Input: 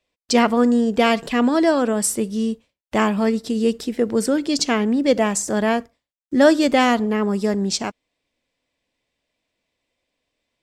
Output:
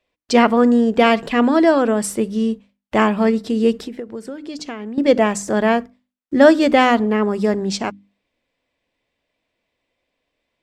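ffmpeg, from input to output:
-filter_complex "[0:a]bass=f=250:g=-1,treble=f=4000:g=-9,bandreject=f=50:t=h:w=6,bandreject=f=100:t=h:w=6,bandreject=f=150:t=h:w=6,bandreject=f=200:t=h:w=6,bandreject=f=250:t=h:w=6,bandreject=f=300:t=h:w=6,asettb=1/sr,asplit=3[s0][s1][s2];[s0]atrim=end=3.744[s3];[s1]atrim=start=3.74:end=4.98,asetpts=PTS-STARTPTS,afade=t=in:d=0.004:c=qsin,afade=t=out:st=1.236:d=0.004:c=qsin,acompressor=threshold=0.0316:ratio=16[s4];[s2]atrim=start=4.976[s5];[s3][s4]acrossfade=d=0.004:c1=hsin:c2=qsin[s6];[s6][s5]acrossfade=d=0.004:c1=qsin:c2=hsin,volume=1.5"

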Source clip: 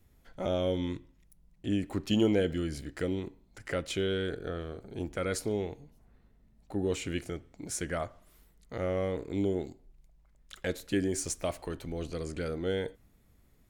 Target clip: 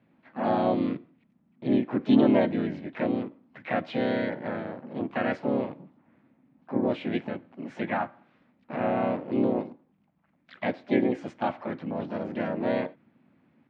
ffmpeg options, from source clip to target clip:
-filter_complex "[0:a]asplit=4[s0][s1][s2][s3];[s1]asetrate=52444,aresample=44100,atempo=0.840896,volume=1[s4];[s2]asetrate=58866,aresample=44100,atempo=0.749154,volume=1[s5];[s3]asetrate=88200,aresample=44100,atempo=0.5,volume=0.282[s6];[s0][s4][s5][s6]amix=inputs=4:normalize=0,highpass=f=150:w=0.5412,highpass=f=150:w=1.3066,equalizer=f=250:t=q:w=4:g=6,equalizer=f=430:t=q:w=4:g=-8,equalizer=f=2800:t=q:w=4:g=-4,lowpass=f=2800:w=0.5412,lowpass=f=2800:w=1.3066,volume=1.12"

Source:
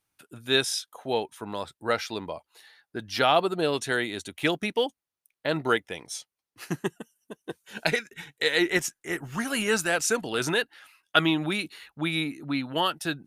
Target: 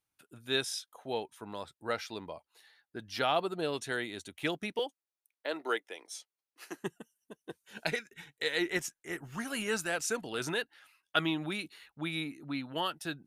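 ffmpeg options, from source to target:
-filter_complex "[0:a]asettb=1/sr,asplit=3[s0][s1][s2];[s0]atrim=end=4.794[s3];[s1]atrim=start=4.79:end=6.82,asetpts=PTS-STARTPTS,afade=t=in:d=0.004:c=qsin,afade=t=out:st=2.026:d=0.004:c=qsin,highpass=f=310:w=0.5412,highpass=f=310:w=1.3066[s4];[s2]atrim=start=6.816[s5];[s3][s4]acrossfade=d=0.004:c1=hsin:c2=qsin[s6];[s6][s5]acrossfade=d=0.004:c1=qsin:c2=hsin,volume=0.398"

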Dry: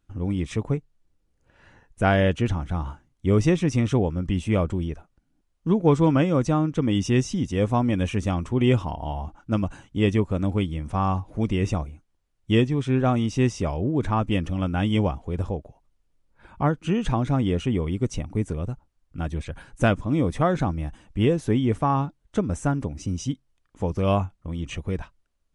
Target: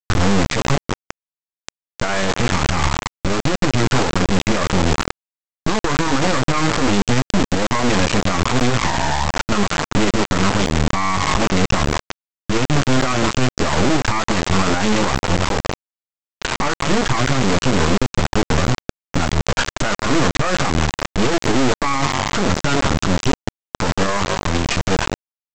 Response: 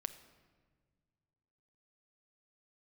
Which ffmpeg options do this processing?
-filter_complex "[0:a]asplit=2[s0][s1];[s1]adelay=15,volume=0.422[s2];[s0][s2]amix=inputs=2:normalize=0,asplit=2[s3][s4];[s4]asplit=3[s5][s6][s7];[s5]adelay=182,afreqshift=-44,volume=0.126[s8];[s6]adelay=364,afreqshift=-88,volume=0.0403[s9];[s7]adelay=546,afreqshift=-132,volume=0.0129[s10];[s8][s9][s10]amix=inputs=3:normalize=0[s11];[s3][s11]amix=inputs=2:normalize=0,acontrast=52,lowpass=f=1800:p=1,aeval=exprs='(tanh(2.51*val(0)+0.5)-tanh(0.5))/2.51':c=same,acompressor=threshold=0.0398:ratio=6,equalizer=f=1200:t=o:w=1.4:g=12.5,bandreject=f=720:w=17,aresample=16000,acrusher=bits=3:dc=4:mix=0:aa=0.000001,aresample=44100,alimiter=level_in=25.1:limit=0.891:release=50:level=0:latency=1,volume=0.447"

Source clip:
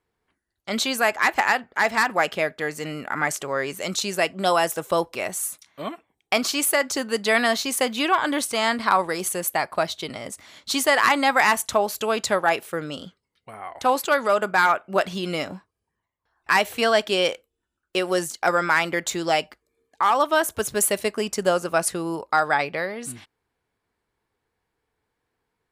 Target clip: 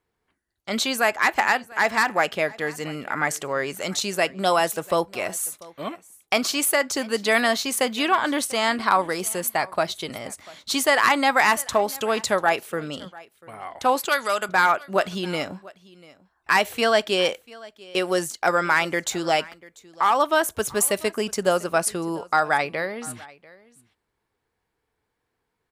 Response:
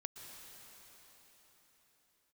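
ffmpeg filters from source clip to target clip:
-filter_complex "[0:a]asettb=1/sr,asplit=3[s0][s1][s2];[s0]atrim=end=14.094[s3];[s1]atrim=start=14.09:end=14.49,asetpts=PTS-STARTPTS,afade=t=in:d=0.004:c=qsin,afade=t=out:st=0.396:d=0.004:c=qsin,tiltshelf=f=1500:g=-8[s4];[s2]atrim=start=14.486[s5];[s3][s4]acrossfade=d=0.004:c1=hsin:c2=qsin[s6];[s6][s5]acrossfade=d=0.004:c1=qsin:c2=hsin,asplit=2[s7][s8];[s8]aecho=0:1:692:0.0794[s9];[s7][s9]amix=inputs=2:normalize=0"

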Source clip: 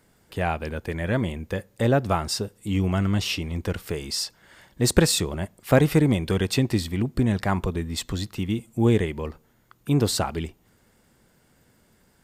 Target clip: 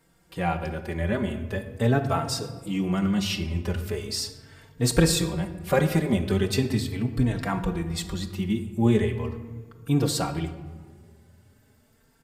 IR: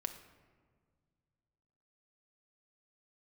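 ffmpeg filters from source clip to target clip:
-filter_complex "[1:a]atrim=start_sample=2205[s0];[0:a][s0]afir=irnorm=-1:irlink=0,asplit=2[s1][s2];[s2]adelay=3.9,afreqshift=0.4[s3];[s1][s3]amix=inputs=2:normalize=1,volume=1.26"

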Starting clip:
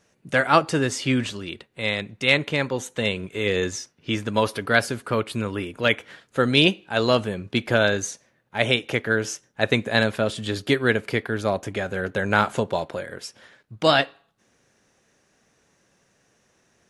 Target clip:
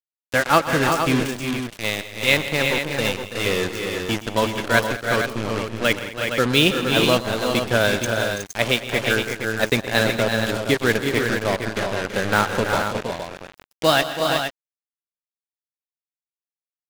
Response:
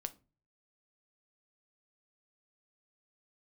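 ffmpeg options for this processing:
-af "acrusher=bits=3:mix=0:aa=0.5,aeval=exprs='sgn(val(0))*max(abs(val(0))-0.0126,0)':c=same,aecho=1:1:121|162|211|331|367|466:0.158|0.158|0.119|0.316|0.473|0.422,volume=1.12"

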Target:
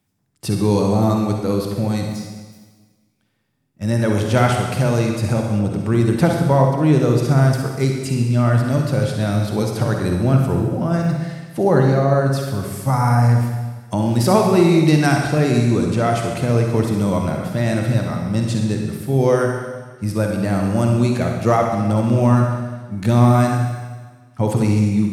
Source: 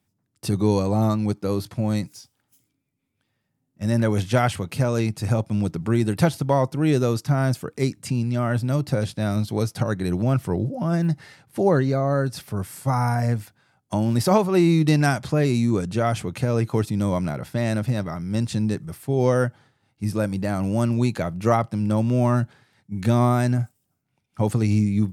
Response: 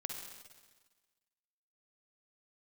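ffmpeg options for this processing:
-filter_complex "[1:a]atrim=start_sample=2205,asetrate=43659,aresample=44100[s0];[0:a][s0]afir=irnorm=-1:irlink=0,asplit=3[s1][s2][s3];[s1]afade=t=out:st=5.58:d=0.02[s4];[s2]adynamicequalizer=threshold=0.00794:dfrequency=2200:dqfactor=0.7:tfrequency=2200:tqfactor=0.7:attack=5:release=100:ratio=0.375:range=2.5:mode=cutabove:tftype=highshelf,afade=t=in:st=5.58:d=0.02,afade=t=out:st=7.18:d=0.02[s5];[s3]afade=t=in:st=7.18:d=0.02[s6];[s4][s5][s6]amix=inputs=3:normalize=0,volume=1.88"

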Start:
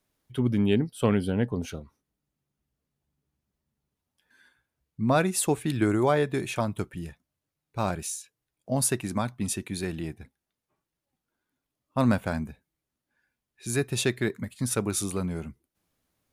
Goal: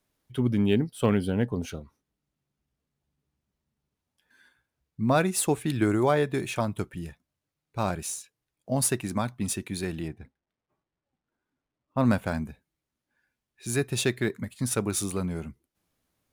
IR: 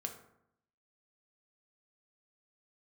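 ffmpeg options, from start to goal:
-filter_complex "[0:a]asettb=1/sr,asplit=3[s0][s1][s2];[s0]atrim=end=10.084[s3];[s1]atrim=start=10.08:end=12.05,asetpts=PTS-STARTPTS,afade=t=in:d=0.004:c=qsin,afade=t=out:st=1.966:d=0.004:c=qsin,lowpass=f=2100:p=1[s4];[s2]atrim=start=12.046[s5];[s3][s4]acrossfade=d=0.004:c1=hsin:c2=qsin[s6];[s6][s5]acrossfade=d=0.004:c1=qsin:c2=hsin" -ar 44100 -c:a adpcm_ima_wav

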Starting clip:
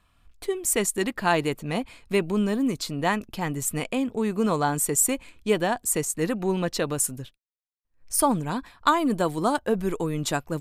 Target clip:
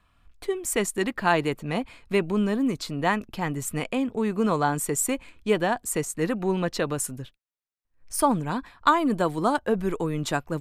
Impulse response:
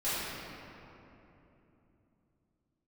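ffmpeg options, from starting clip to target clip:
-filter_complex "[0:a]acrossover=split=660|1800[s0][s1][s2];[s1]crystalizer=i=4.5:c=0[s3];[s0][s3][s2]amix=inputs=3:normalize=0,highshelf=f=5000:g=-6.5"

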